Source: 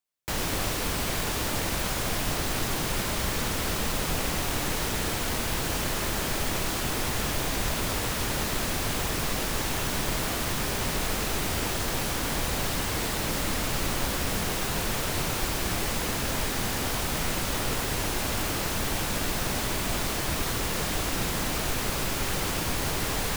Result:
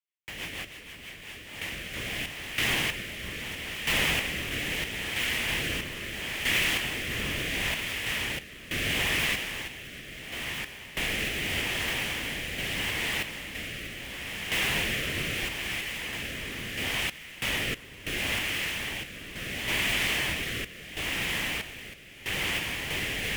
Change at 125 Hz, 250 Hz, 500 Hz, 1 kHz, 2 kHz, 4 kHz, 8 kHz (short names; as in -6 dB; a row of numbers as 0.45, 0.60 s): -7.5, -6.5, -7.0, -8.5, +3.5, +1.0, -7.5 dB